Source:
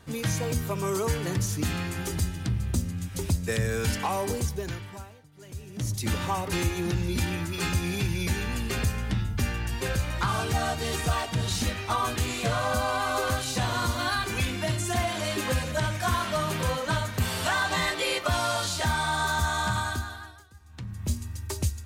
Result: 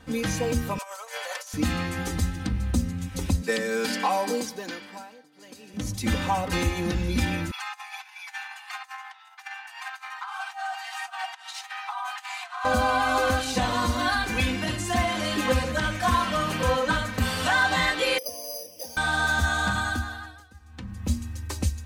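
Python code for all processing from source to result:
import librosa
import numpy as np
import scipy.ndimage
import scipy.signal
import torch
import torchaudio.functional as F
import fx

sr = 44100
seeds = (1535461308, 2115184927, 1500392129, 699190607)

y = fx.chain(x, sr, fx.cheby1_highpass(hz=550.0, order=5),
    fx.over_compress(threshold_db=-38.0, ratio=-0.5), at=(0.78, 1.54))
y = fx.chain(y, sr, fx.highpass(hz=220.0, slope=24),
    fx.peak_eq(hz=4600.0, db=7.5, octaves=0.25), at=(3.42, 5.74))
y = fx.chain(y, sr, fx.high_shelf(hz=2300.0, db=-10.5),
    fx.over_compress(threshold_db=-32.0, ratio=-1.0),
    fx.steep_highpass(hz=740.0, slope=96), at=(7.51, 12.65))
y = fx.chain(y, sr, fx.double_bandpass(hz=1400.0, octaves=3.0),
    fx.resample_bad(factor=8, down='filtered', up='zero_stuff'), at=(18.18, 18.97))
y = fx.high_shelf(y, sr, hz=6000.0, db=-8.0)
y = y + 0.74 * np.pad(y, (int(3.9 * sr / 1000.0), 0))[:len(y)]
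y = y * 10.0 ** (2.0 / 20.0)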